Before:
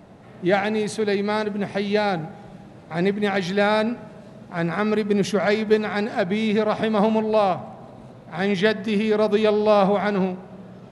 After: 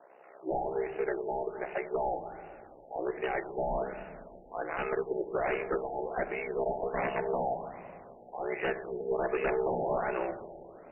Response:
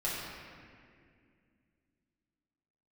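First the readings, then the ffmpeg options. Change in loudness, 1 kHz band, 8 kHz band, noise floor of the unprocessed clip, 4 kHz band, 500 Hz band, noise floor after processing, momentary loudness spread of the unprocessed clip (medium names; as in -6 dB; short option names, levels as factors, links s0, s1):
-12.0 dB, -9.0 dB, under -35 dB, -44 dBFS, under -20 dB, -10.5 dB, -54 dBFS, 11 LU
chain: -filter_complex "[0:a]highpass=f=450:w=0.5412,highpass=f=450:w=1.3066,aeval=exprs='val(0)*sin(2*PI*32*n/s)':c=same,aeval=exprs='0.0841*(abs(mod(val(0)/0.0841+3,4)-2)-1)':c=same,asplit=2[s0][s1];[1:a]atrim=start_sample=2205,lowshelf=f=460:g=10[s2];[s1][s2]afir=irnorm=-1:irlink=0,volume=0.133[s3];[s0][s3]amix=inputs=2:normalize=0,afftfilt=real='re*lt(b*sr/1024,870*pow(3000/870,0.5+0.5*sin(2*PI*1.3*pts/sr)))':imag='im*lt(b*sr/1024,870*pow(3000/870,0.5+0.5*sin(2*PI*1.3*pts/sr)))':win_size=1024:overlap=0.75,volume=0.708"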